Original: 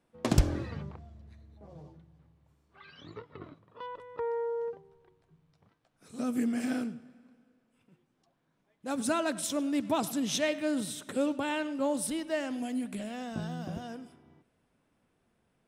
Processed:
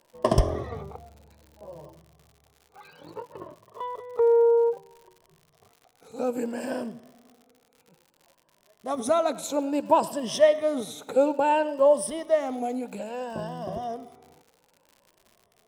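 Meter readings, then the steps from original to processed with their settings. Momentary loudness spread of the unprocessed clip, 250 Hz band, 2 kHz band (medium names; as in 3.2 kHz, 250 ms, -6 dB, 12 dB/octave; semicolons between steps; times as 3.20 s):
20 LU, -0.5 dB, +0.5 dB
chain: drifting ripple filter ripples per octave 1.3, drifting +0.6 Hz, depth 12 dB; high-order bell 660 Hz +11.5 dB; crackle 110 per s -41 dBFS; trim -2 dB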